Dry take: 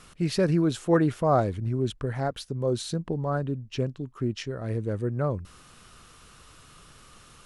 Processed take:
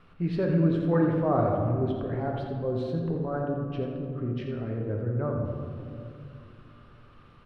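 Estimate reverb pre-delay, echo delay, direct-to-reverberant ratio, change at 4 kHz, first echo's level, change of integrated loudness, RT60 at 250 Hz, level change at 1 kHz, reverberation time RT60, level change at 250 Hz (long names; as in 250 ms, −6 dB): 7 ms, 84 ms, −0.5 dB, −12.5 dB, −8.5 dB, −1.0 dB, 3.6 s, −2.0 dB, 2.5 s, 0.0 dB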